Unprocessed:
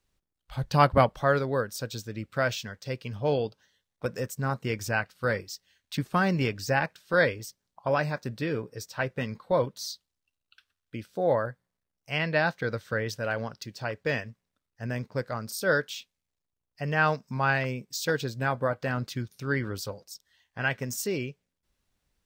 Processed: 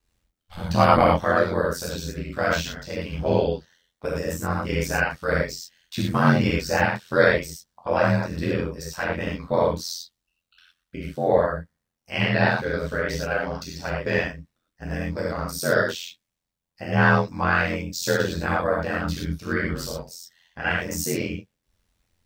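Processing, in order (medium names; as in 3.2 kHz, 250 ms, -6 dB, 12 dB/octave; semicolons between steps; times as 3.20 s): gated-style reverb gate 140 ms flat, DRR -5.5 dB; ring modulator 43 Hz; trim +1.5 dB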